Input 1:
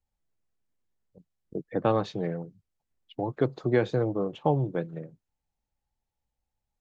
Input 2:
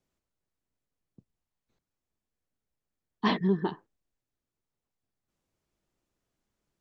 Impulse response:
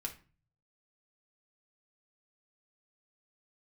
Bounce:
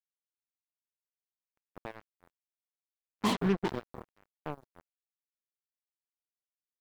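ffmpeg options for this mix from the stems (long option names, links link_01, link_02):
-filter_complex "[0:a]highpass=54,equalizer=frequency=2000:width_type=o:width=2.7:gain=-10,acrusher=bits=8:mix=0:aa=0.000001,volume=-12.5dB,asplit=2[link_01][link_02];[link_02]volume=-21dB[link_03];[1:a]volume=-2.5dB,asplit=2[link_04][link_05];[link_05]volume=-19.5dB[link_06];[link_03][link_06]amix=inputs=2:normalize=0,aecho=0:1:483|966|1449:1|0.19|0.0361[link_07];[link_01][link_04][link_07]amix=inputs=3:normalize=0,equalizer=frequency=1700:width_type=o:width=0.3:gain=-14,acrusher=bits=4:mix=0:aa=0.5"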